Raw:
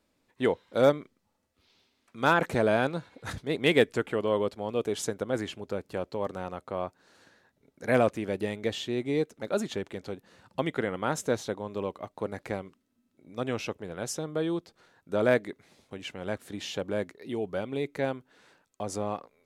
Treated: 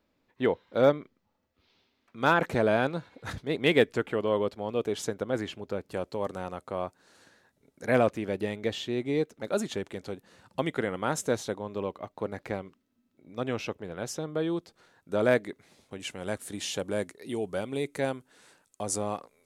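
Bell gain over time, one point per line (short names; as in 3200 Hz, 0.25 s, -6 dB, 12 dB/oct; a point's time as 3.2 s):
bell 9300 Hz 1.1 oct
-13.5 dB
from 2.21 s -4.5 dB
from 5.91 s +5.5 dB
from 7.86 s -3 dB
from 9.44 s +3.5 dB
from 11.58 s -5 dB
from 14.57 s +2.5 dB
from 16 s +13 dB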